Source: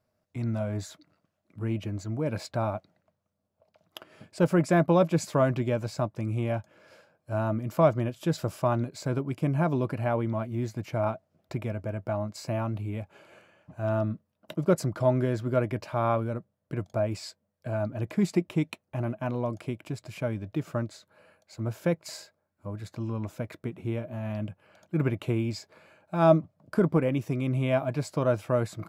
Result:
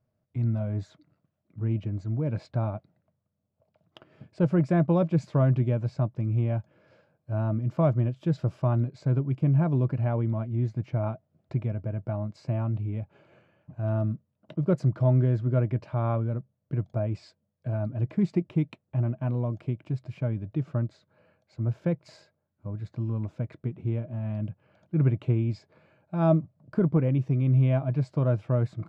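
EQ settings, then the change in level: LPF 4200 Hz 12 dB/oct; bell 130 Hz +7.5 dB 0.45 oct; low shelf 480 Hz +9 dB; -8.0 dB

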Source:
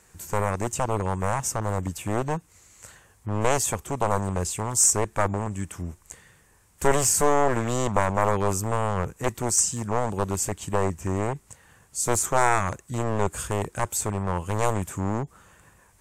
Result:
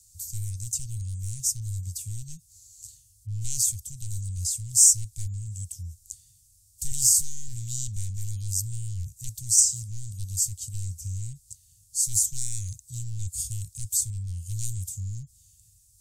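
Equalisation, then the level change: elliptic band-stop 110–4600 Hz, stop band 60 dB; bell 12000 Hz +6 dB 3 oct; -1.5 dB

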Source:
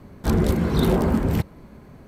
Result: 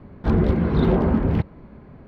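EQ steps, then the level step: air absorption 330 m; +1.5 dB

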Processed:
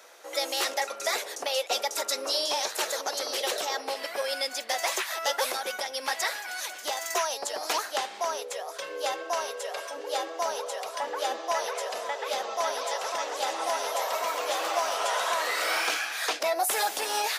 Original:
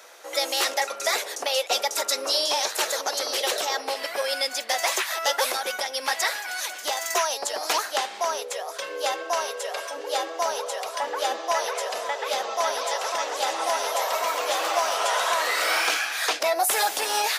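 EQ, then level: low shelf 430 Hz +3.5 dB; -4.5 dB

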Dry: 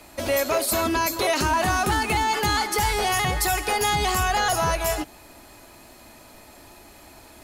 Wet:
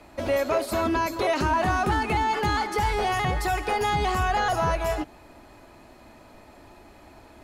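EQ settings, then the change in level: LPF 1700 Hz 6 dB/oct; 0.0 dB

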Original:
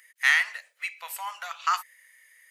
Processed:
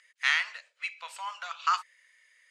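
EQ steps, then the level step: speaker cabinet 430–7000 Hz, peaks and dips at 770 Hz -6 dB, 1900 Hz -7 dB, 6100 Hz -4 dB; 0.0 dB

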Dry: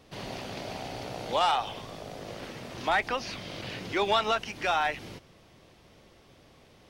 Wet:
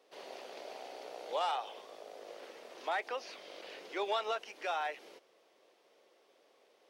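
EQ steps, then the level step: ladder high-pass 370 Hz, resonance 40%; -2.5 dB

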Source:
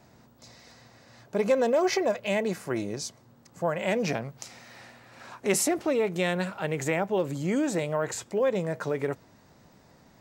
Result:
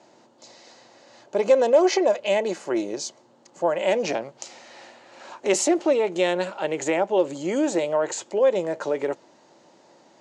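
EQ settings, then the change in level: speaker cabinet 260–8000 Hz, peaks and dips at 340 Hz +9 dB, 570 Hz +8 dB, 870 Hz +7 dB, 3000 Hz +6 dB, 4300 Hz +4 dB, 6800 Hz +7 dB; 0.0 dB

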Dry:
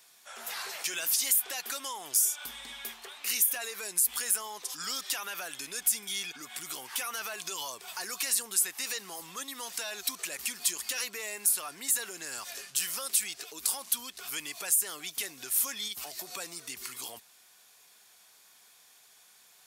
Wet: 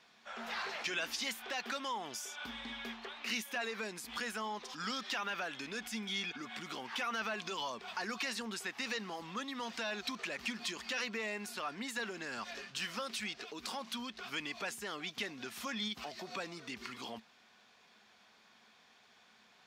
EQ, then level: air absorption 220 m; bell 220 Hz +12.5 dB 0.34 oct; +2.5 dB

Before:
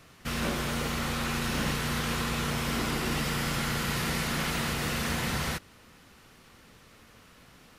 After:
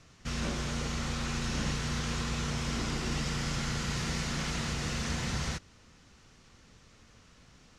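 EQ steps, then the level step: synth low-pass 6500 Hz, resonance Q 2.2; low shelf 160 Hz +9 dB; -6.5 dB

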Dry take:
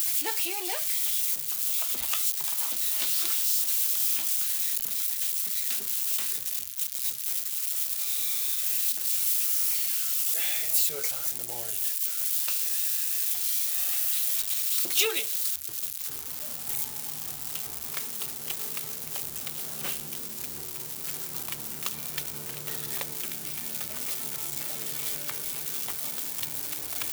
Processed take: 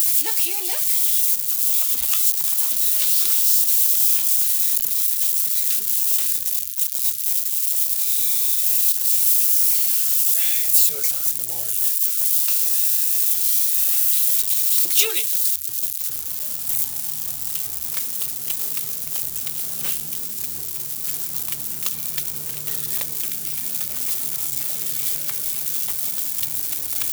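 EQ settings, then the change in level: low shelf 150 Hz +9 dB; high shelf 3800 Hz +10.5 dB; -1.0 dB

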